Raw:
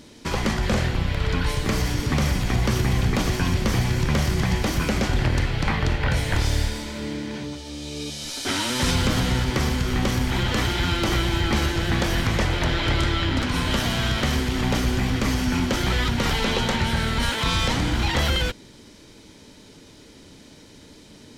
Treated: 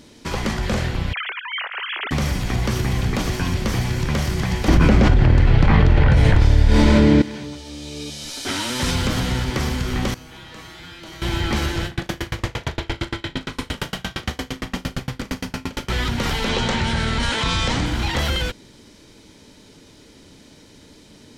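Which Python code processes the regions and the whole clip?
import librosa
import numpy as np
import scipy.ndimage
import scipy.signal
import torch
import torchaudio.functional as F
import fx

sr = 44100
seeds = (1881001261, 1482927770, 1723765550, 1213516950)

y = fx.chain(x, sr, fx.sine_speech(),
    fx.highpass(hz=1300.0, slope=12),
    fx.over_compress(threshold_db=-28.0, ratio=-0.5), at=(1.13, 2.11))
y = fx.chain(y, sr, fx.lowpass(hz=3300.0, slope=6),
    fx.tilt_eq(slope=-1.5),
    fx.env_flatten(amount_pct=100), at=(4.68, 7.22))
y = fx.chain(y, sr, fx.low_shelf(hz=120.0, db=-7.0),
    fx.comb_fb(f0_hz=160.0, decay_s=0.69, harmonics='all', damping=0.0, mix_pct=90), at=(10.14, 11.22))
y = fx.chain(y, sr, fx.room_flutter(wall_m=6.6, rt60_s=1.1),
    fx.tremolo_decay(direction='decaying', hz=8.7, depth_db=34), at=(11.86, 15.89))
y = fx.chain(y, sr, fx.lowpass(hz=9000.0, slope=24),
    fx.env_flatten(amount_pct=50), at=(16.49, 17.86))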